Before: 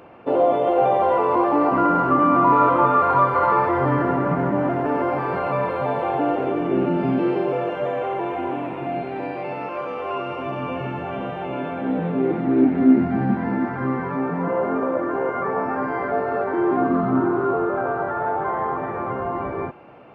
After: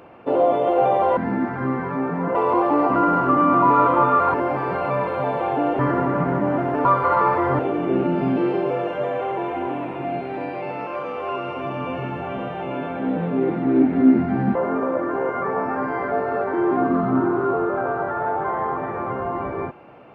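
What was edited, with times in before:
3.16–3.9 swap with 4.96–6.41
13.37–14.55 move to 1.17

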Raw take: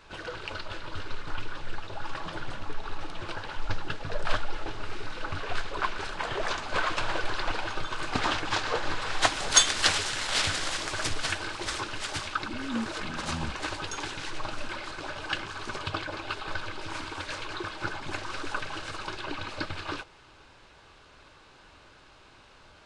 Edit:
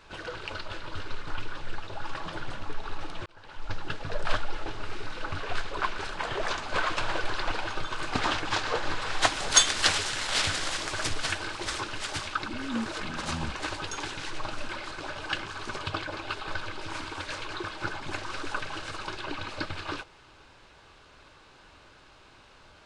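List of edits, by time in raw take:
3.26–3.93 fade in

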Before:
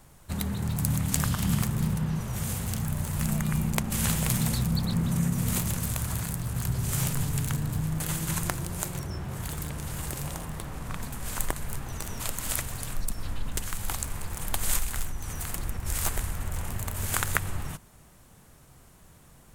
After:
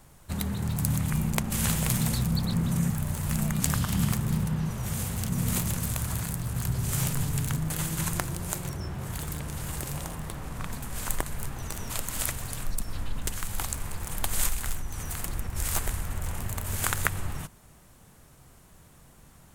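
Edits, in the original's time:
1.1–2.8 swap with 3.5–5.3
7.58–7.88 cut

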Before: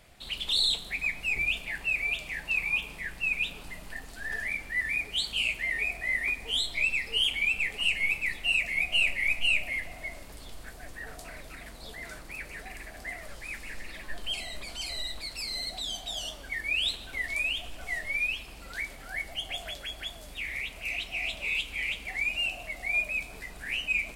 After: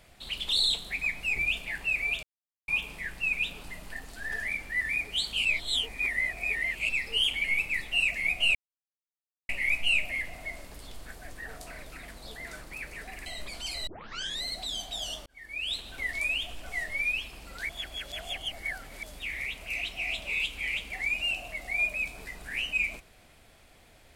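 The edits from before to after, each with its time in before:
2.23–2.68 mute
5.45–6.89 reverse
7.44–7.96 cut
9.07 insert silence 0.94 s
12.84–14.41 cut
15.02 tape start 0.56 s
16.41–17.11 fade in
18.84–20.18 reverse

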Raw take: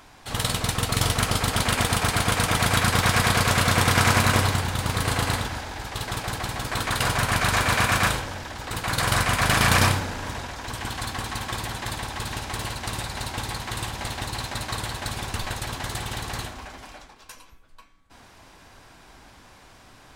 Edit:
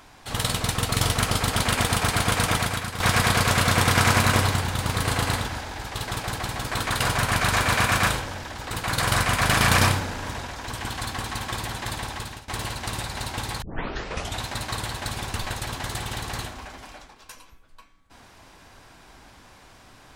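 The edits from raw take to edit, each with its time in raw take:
2.53–3 fade out quadratic, to -12 dB
12.11–12.48 fade out, to -19.5 dB
13.62 tape start 0.83 s

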